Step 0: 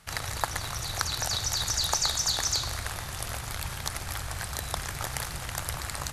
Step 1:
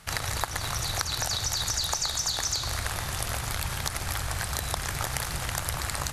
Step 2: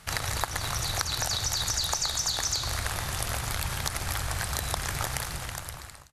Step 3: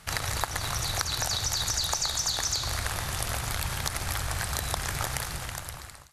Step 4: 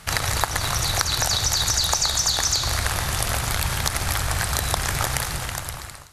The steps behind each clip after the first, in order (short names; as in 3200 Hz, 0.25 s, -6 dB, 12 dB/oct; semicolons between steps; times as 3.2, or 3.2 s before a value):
compressor, threshold -30 dBFS, peak gain reduction 9 dB; gain +5 dB
ending faded out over 1.10 s
thinning echo 71 ms, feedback 72%, level -19.5 dB
reverb RT60 2.5 s, pre-delay 21 ms, DRR 17.5 dB; gain +7 dB